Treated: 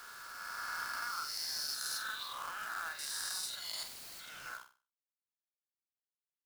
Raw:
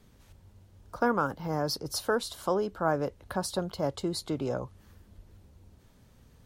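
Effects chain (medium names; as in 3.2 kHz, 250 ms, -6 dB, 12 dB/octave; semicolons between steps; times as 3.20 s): reverse spectral sustain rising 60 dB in 2.64 s; high-pass 1.5 kHz 24 dB/octave; reverb removal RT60 1.3 s; 2.02–2.99 s: low-pass 3.8 kHz 24 dB/octave; compression 5:1, threshold -39 dBFS, peak gain reduction 11.5 dB; companded quantiser 4-bit; 3.83–4.46 s: integer overflow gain 44.5 dB; flutter echo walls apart 8 m, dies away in 0.35 s; trim +1 dB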